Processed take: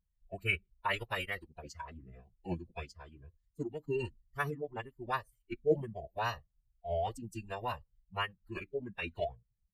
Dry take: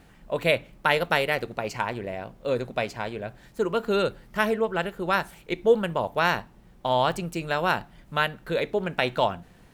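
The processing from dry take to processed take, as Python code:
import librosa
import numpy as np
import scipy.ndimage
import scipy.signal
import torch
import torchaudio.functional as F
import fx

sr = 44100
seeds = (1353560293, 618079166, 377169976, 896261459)

y = fx.bin_expand(x, sr, power=2.0)
y = fx.pitch_keep_formants(y, sr, semitones=-7.0)
y = y * 10.0 ** (-6.5 / 20.0)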